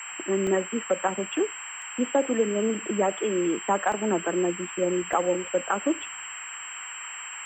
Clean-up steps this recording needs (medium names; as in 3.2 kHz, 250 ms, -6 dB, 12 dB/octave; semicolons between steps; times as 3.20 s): band-stop 7.6 kHz, Q 30; interpolate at 0.47/1.82/3.92/5.13 s, 1.4 ms; noise print and reduce 30 dB